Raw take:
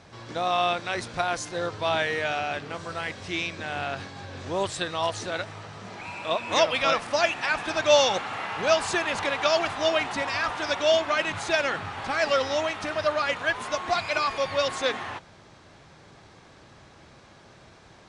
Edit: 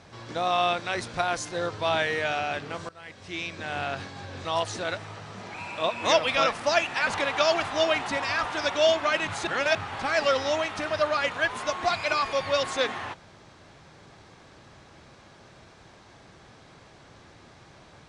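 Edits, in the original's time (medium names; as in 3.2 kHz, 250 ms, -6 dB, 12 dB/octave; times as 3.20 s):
2.89–3.75 s: fade in, from -21.5 dB
4.45–4.92 s: delete
7.54–9.12 s: delete
11.52–11.80 s: reverse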